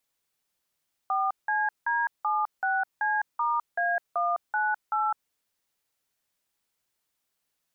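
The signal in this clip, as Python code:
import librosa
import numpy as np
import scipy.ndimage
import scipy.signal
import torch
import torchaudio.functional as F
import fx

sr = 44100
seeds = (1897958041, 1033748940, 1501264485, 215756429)

y = fx.dtmf(sr, digits='4CD76C*A198', tone_ms=207, gap_ms=175, level_db=-26.0)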